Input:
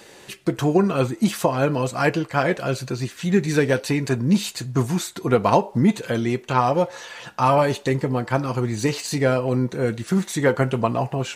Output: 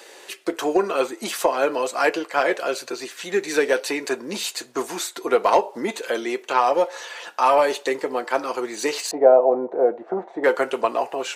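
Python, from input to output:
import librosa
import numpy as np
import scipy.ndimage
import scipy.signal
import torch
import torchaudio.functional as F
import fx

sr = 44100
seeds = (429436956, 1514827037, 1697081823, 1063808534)

y = scipy.signal.sosfilt(scipy.signal.butter(4, 360.0, 'highpass', fs=sr, output='sos'), x)
y = 10.0 ** (-7.0 / 20.0) * np.tanh(y / 10.0 ** (-7.0 / 20.0))
y = fx.lowpass_res(y, sr, hz=730.0, q=4.1, at=(9.11, 10.44))
y = y * 10.0 ** (2.0 / 20.0)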